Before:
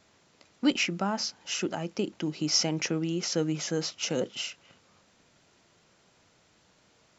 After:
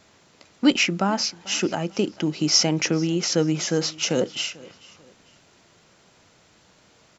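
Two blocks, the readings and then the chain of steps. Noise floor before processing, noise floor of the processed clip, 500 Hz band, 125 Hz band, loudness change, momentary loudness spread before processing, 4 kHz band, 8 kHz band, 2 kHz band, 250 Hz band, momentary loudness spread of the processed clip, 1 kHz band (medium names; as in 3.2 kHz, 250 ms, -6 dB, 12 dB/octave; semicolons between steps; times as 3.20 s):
-65 dBFS, -58 dBFS, +7.0 dB, +7.0 dB, +7.0 dB, 7 LU, +7.0 dB, no reading, +7.0 dB, +7.0 dB, 8 LU, +7.0 dB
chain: feedback delay 442 ms, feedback 34%, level -22 dB; trim +7 dB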